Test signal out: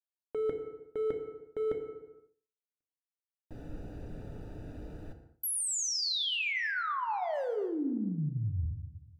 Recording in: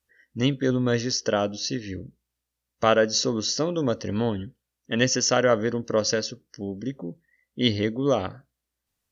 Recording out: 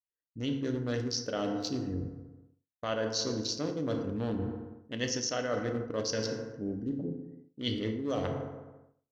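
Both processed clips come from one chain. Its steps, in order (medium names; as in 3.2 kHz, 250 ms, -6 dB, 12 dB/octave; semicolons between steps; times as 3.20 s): local Wiener filter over 41 samples; FDN reverb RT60 1.2 s, low-frequency decay 1.05×, high-frequency decay 0.55×, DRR 5 dB; dynamic bell 4.3 kHz, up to +5 dB, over -44 dBFS, Q 1.2; reverse; compression 6:1, threshold -30 dBFS; reverse; expander -54 dBFS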